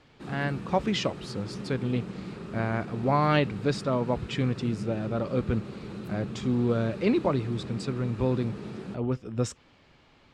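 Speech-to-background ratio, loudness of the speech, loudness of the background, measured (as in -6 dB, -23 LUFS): 9.5 dB, -29.5 LUFS, -39.0 LUFS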